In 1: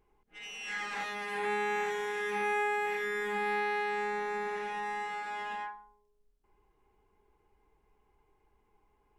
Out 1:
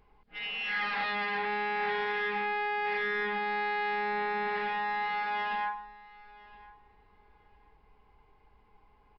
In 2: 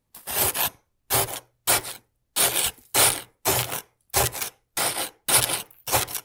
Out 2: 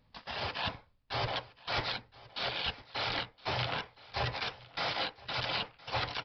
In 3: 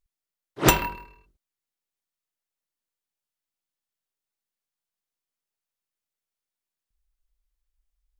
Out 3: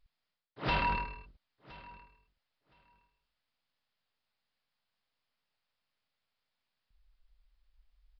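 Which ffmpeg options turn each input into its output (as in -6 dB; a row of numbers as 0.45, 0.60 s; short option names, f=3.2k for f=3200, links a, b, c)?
-af "equalizer=f=360:t=o:w=0.43:g=-9.5,areverse,acompressor=threshold=-35dB:ratio=8,areverse,asoftclip=type=tanh:threshold=-30.5dB,aecho=1:1:1017|2034:0.0891|0.0134,aresample=11025,aresample=44100,volume=8.5dB"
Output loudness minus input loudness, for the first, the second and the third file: +2.5, -12.5, -10.5 LU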